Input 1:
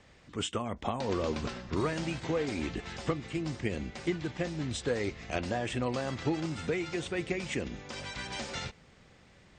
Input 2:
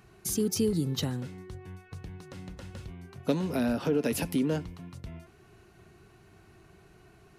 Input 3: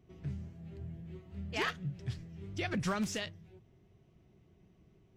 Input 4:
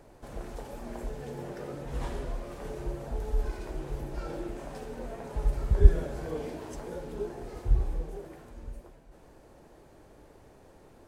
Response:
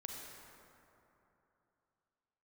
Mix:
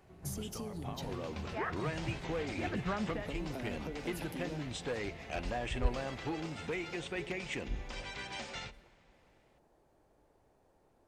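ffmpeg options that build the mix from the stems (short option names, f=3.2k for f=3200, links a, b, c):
-filter_complex "[0:a]dynaudnorm=f=380:g=7:m=12dB,volume=14.5dB,asoftclip=hard,volume=-14.5dB,equalizer=f=2.5k:t=o:w=1.2:g=5.5,volume=-19.5dB,asplit=2[a][b];[b]volume=-16.5dB[c];[1:a]acompressor=threshold=-31dB:ratio=6,volume=-11.5dB,asplit=2[d][e];[e]volume=-9dB[f];[2:a]lowpass=f=1.9k:w=0.5412,lowpass=f=1.9k:w=1.3066,volume=-3dB[g];[3:a]volume=-15.5dB[h];[4:a]atrim=start_sample=2205[i];[c][f]amix=inputs=2:normalize=0[j];[j][i]afir=irnorm=-1:irlink=0[k];[a][d][g][h][k]amix=inputs=5:normalize=0,equalizer=f=780:t=o:w=0.94:g=4.5"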